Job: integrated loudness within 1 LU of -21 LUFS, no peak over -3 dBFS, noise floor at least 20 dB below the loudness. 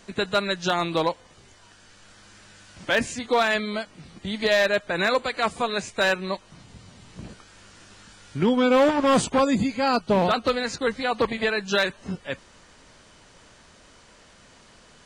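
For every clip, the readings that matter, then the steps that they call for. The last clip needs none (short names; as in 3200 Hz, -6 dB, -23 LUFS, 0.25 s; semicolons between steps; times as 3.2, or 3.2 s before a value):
clipped 0.4%; flat tops at -13.0 dBFS; loudness -23.5 LUFS; peak -13.0 dBFS; loudness target -21.0 LUFS
-> clip repair -13 dBFS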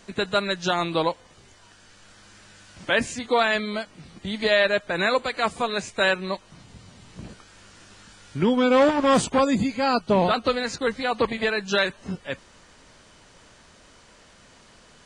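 clipped 0.0%; loudness -23.0 LUFS; peak -7.0 dBFS; loudness target -21.0 LUFS
-> gain +2 dB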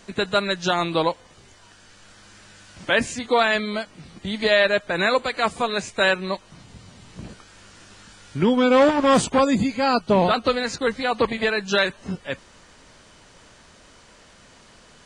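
loudness -21.0 LUFS; peak -5.0 dBFS; noise floor -51 dBFS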